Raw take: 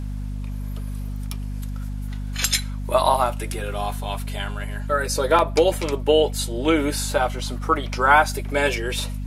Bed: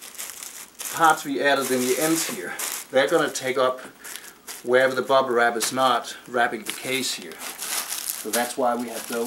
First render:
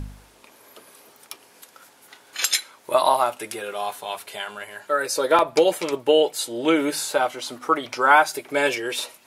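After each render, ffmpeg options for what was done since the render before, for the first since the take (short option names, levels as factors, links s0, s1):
-af "bandreject=f=50:t=h:w=4,bandreject=f=100:t=h:w=4,bandreject=f=150:t=h:w=4,bandreject=f=200:t=h:w=4,bandreject=f=250:t=h:w=4"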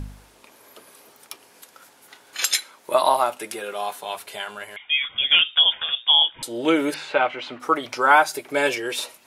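-filter_complex "[0:a]asettb=1/sr,asplit=3[s0][s1][s2];[s0]atrim=end=2.414[s3];[s1]atrim=start=2.41:end=4.07,asetpts=PTS-STARTPTS,afade=t=in:d=0.004:c=qsin,afade=t=out:st=1.656:d=0.004:c=qsin,highpass=f=130:w=0.5412,highpass=f=130:w=1.3066[s4];[s2]atrim=start=4.066[s5];[s3][s4]acrossfade=d=0.004:c1=hsin:c2=qsin[s6];[s6][s5]acrossfade=d=0.004:c1=qsin:c2=hsin,asettb=1/sr,asplit=3[s7][s8][s9];[s7]atrim=end=4.764[s10];[s8]atrim=start=4.76:end=6.43,asetpts=PTS-STARTPTS,afade=t=in:d=0.004:c=qsin,afade=t=out:st=1.666:d=0.004:c=qsin,lowpass=f=3200:t=q:w=0.5098,lowpass=f=3200:t=q:w=0.6013,lowpass=f=3200:t=q:w=0.9,lowpass=f=3200:t=q:w=2.563,afreqshift=-3800[s11];[s9]atrim=start=6.426[s12];[s10][s11]acrossfade=d=0.004:c1=hsin:c2=qsin[s13];[s13][s12]acrossfade=d=0.004:c1=qsin:c2=hsin,asettb=1/sr,asplit=3[s14][s15][s16];[s14]atrim=end=6.944[s17];[s15]atrim=start=6.94:end=7.6,asetpts=PTS-STARTPTS,afade=t=in:d=0.004:c=qsin,afade=t=out:st=0.656:d=0.004:c=qsin,lowpass=f=2500:t=q:w=2.6[s18];[s16]atrim=start=7.596[s19];[s17][s18]acrossfade=d=0.004:c1=hsin:c2=qsin[s20];[s20][s19]acrossfade=d=0.004:c1=qsin:c2=hsin"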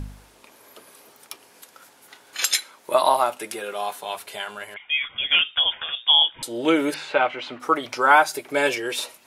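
-filter_complex "[0:a]asettb=1/sr,asplit=3[s0][s1][s2];[s0]atrim=end=4.744[s3];[s1]atrim=start=4.74:end=5.95,asetpts=PTS-STARTPTS,afade=t=in:d=0.004:c=qsin,afade=t=out:st=1.206:d=0.004:c=qsin,lowpass=f=3100:w=0.5412,lowpass=f=3100:w=1.3066[s4];[s2]atrim=start=5.946[s5];[s3][s4]acrossfade=d=0.004:c1=hsin:c2=qsin[s6];[s6][s5]acrossfade=d=0.004:c1=qsin:c2=hsin"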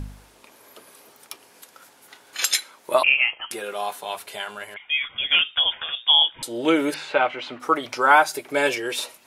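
-filter_complex "[0:a]asettb=1/sr,asplit=3[s0][s1][s2];[s0]atrim=end=3.034[s3];[s1]atrim=start=3.03:end=3.51,asetpts=PTS-STARTPTS,afade=t=in:d=0.004:c=qsin,afade=t=out:st=0.476:d=0.004:c=qsin,lowpass=f=2900:t=q:w=0.5098,lowpass=f=2900:t=q:w=0.6013,lowpass=f=2900:t=q:w=0.9,lowpass=f=2900:t=q:w=2.563,afreqshift=-3400[s4];[s2]atrim=start=3.506[s5];[s3][s4]acrossfade=d=0.004:c1=hsin:c2=qsin[s6];[s6][s5]acrossfade=d=0.004:c1=qsin:c2=hsin"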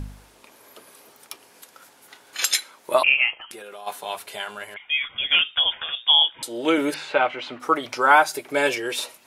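-filter_complex "[0:a]asplit=3[s0][s1][s2];[s0]afade=t=out:st=3.37:d=0.02[s3];[s1]acompressor=threshold=0.0158:ratio=6:attack=3.2:release=140:knee=1:detection=peak,afade=t=in:st=3.37:d=0.02,afade=t=out:st=3.86:d=0.02[s4];[s2]afade=t=in:st=3.86:d=0.02[s5];[s3][s4][s5]amix=inputs=3:normalize=0,asettb=1/sr,asplit=3[s6][s7][s8];[s6]atrim=end=6.144[s9];[s7]atrim=start=6.14:end=6.78,asetpts=PTS-STARTPTS,afade=t=in:d=0.004:c=qsin,afade=t=out:st=0.636:d=0.004:c=qsin,highpass=f=230:p=1[s10];[s8]atrim=start=6.776[s11];[s9][s10]acrossfade=d=0.004:c1=hsin:c2=qsin[s12];[s12][s11]acrossfade=d=0.004:c1=qsin:c2=hsin"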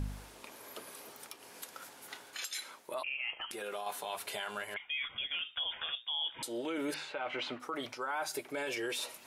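-af "areverse,acompressor=threshold=0.0447:ratio=10,areverse,alimiter=level_in=1.58:limit=0.0631:level=0:latency=1:release=156,volume=0.631"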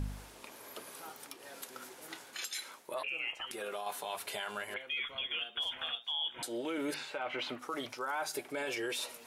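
-filter_complex "[1:a]volume=0.0211[s0];[0:a][s0]amix=inputs=2:normalize=0"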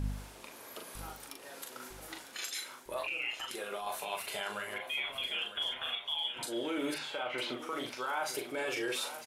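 -filter_complex "[0:a]asplit=2[s0][s1];[s1]adelay=40,volume=0.562[s2];[s0][s2]amix=inputs=2:normalize=0,aecho=1:1:953|1906|2859|3812:0.251|0.1|0.0402|0.0161"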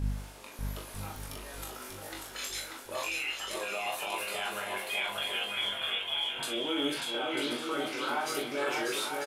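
-filter_complex "[0:a]asplit=2[s0][s1];[s1]adelay=21,volume=0.668[s2];[s0][s2]amix=inputs=2:normalize=0,asplit=2[s3][s4];[s4]aecho=0:1:590|944|1156|1284|1360:0.631|0.398|0.251|0.158|0.1[s5];[s3][s5]amix=inputs=2:normalize=0"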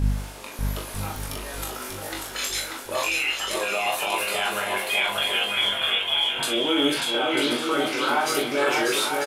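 -af "volume=2.99"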